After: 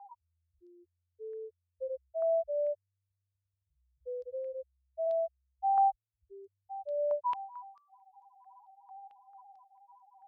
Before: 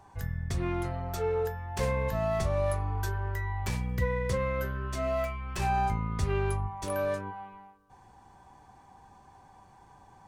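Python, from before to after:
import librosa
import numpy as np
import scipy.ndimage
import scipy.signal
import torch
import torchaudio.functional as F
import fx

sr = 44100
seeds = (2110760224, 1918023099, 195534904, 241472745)

y = fx.spec_topn(x, sr, count=1)
y = scipy.signal.sosfilt(scipy.signal.cheby2(4, 40, 300.0, 'highpass', fs=sr, output='sos'), y)
y = fx.filter_held_lowpass(y, sr, hz=4.5, low_hz=980.0, high_hz=6600.0)
y = F.gain(torch.from_numpy(y), 7.0).numpy()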